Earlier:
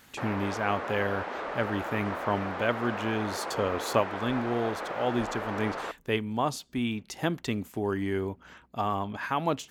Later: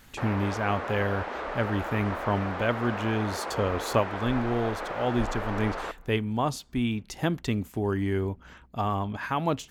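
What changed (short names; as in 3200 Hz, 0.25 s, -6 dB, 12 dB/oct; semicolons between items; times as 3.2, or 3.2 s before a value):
speech: remove HPF 200 Hz 6 dB/oct; reverb: on, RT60 2.9 s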